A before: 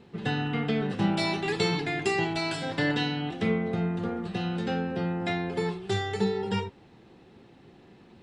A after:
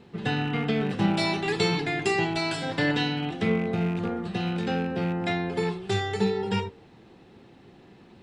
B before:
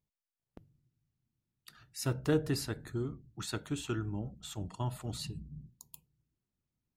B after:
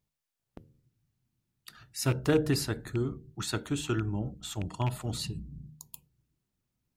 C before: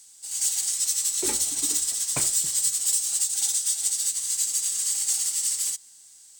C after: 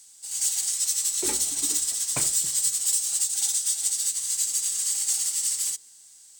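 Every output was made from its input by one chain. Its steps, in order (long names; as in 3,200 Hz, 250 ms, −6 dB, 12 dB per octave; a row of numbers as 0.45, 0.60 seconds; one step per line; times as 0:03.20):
loose part that buzzes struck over −30 dBFS, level −33 dBFS
hum removal 76.08 Hz, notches 7
normalise the peak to −12 dBFS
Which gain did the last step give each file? +2.0, +5.5, −0.5 decibels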